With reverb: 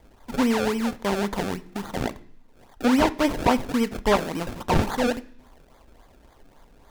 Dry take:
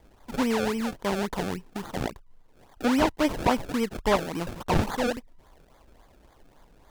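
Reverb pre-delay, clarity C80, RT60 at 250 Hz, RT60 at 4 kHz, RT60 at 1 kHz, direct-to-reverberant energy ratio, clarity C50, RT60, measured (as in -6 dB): 3 ms, 23.0 dB, 0.85 s, 0.75 s, 0.60 s, 12.0 dB, 19.5 dB, 0.55 s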